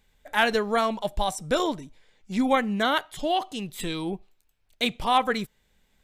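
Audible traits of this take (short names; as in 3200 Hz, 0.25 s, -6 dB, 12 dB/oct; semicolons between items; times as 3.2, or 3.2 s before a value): noise floor -68 dBFS; spectral tilt -4.0 dB/oct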